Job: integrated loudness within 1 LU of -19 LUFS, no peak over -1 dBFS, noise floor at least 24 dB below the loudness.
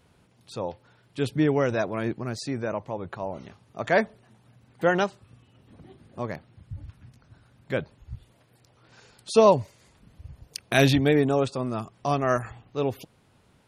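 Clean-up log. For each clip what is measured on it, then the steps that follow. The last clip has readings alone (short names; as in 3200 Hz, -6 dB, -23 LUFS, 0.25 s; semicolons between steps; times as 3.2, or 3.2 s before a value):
loudness -26.0 LUFS; peak -5.0 dBFS; loudness target -19.0 LUFS
-> gain +7 dB; limiter -1 dBFS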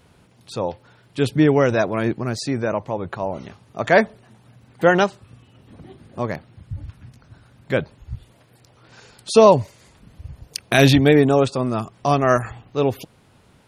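loudness -19.0 LUFS; peak -1.0 dBFS; noise floor -55 dBFS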